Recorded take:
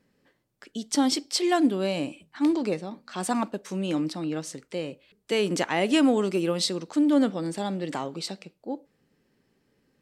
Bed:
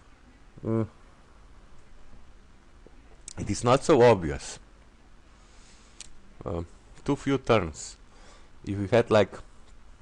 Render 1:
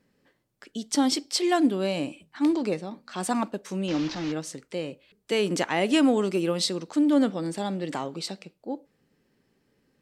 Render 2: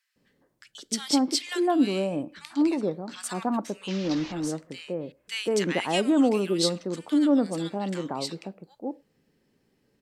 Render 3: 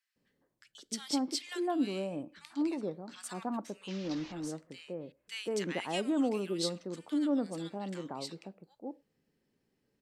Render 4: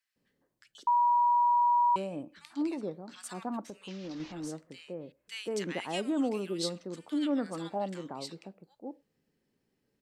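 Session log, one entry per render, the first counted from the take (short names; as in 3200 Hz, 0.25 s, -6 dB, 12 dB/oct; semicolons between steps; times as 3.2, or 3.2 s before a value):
3.88–4.32 delta modulation 32 kbps, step -30 dBFS
bands offset in time highs, lows 0.16 s, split 1400 Hz
gain -9 dB
0.87–1.96 bleep 963 Hz -21.5 dBFS; 3.69–4.2 compressor, threshold -37 dBFS; 7.17–7.85 bell 3300 Hz -> 590 Hz +12.5 dB 0.84 oct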